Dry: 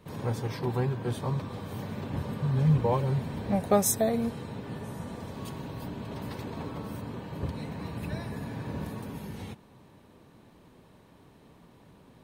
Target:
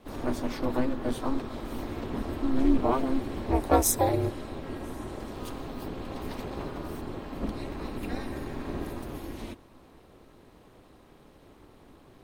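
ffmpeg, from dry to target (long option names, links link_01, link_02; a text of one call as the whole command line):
ffmpeg -i in.wav -filter_complex "[0:a]aeval=exprs='val(0)*sin(2*PI*130*n/s)':channel_layout=same,asplit=2[link_01][link_02];[link_02]asetrate=55563,aresample=44100,atempo=0.793701,volume=-11dB[link_03];[link_01][link_03]amix=inputs=2:normalize=0,volume=4dB" out.wav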